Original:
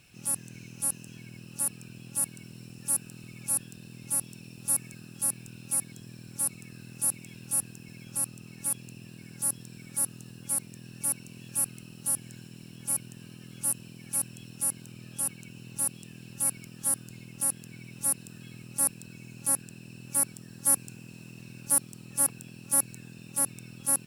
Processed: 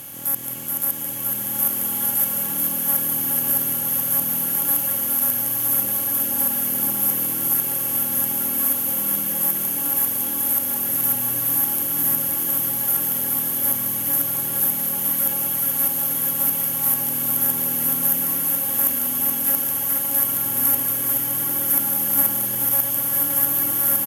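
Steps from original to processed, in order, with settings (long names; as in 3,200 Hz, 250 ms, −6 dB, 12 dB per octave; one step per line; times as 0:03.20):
compressor on every frequency bin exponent 0.4
formants moved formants +3 semitones
on a send: multi-tap delay 187/426 ms −10/−3.5 dB
on the sum: slow-attack reverb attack 1,470 ms, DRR −2 dB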